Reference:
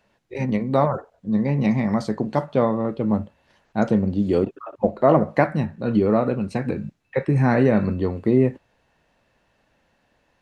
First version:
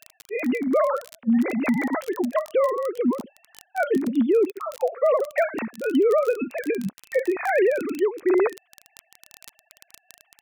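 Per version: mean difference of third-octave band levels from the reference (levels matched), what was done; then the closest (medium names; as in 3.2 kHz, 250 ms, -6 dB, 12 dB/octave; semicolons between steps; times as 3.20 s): 13.0 dB: formants replaced by sine waves; crackle 22 per s -30 dBFS; peak limiter -14 dBFS, peak gain reduction 8 dB; treble shelf 2.1 kHz +10.5 dB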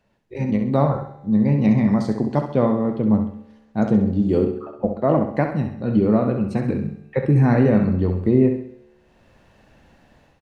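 3.5 dB: bass shelf 370 Hz +8 dB; level rider gain up to 12.5 dB; feedback comb 73 Hz, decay 1.3 s, harmonics all, mix 50%; feedback delay 66 ms, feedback 42%, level -7.5 dB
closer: second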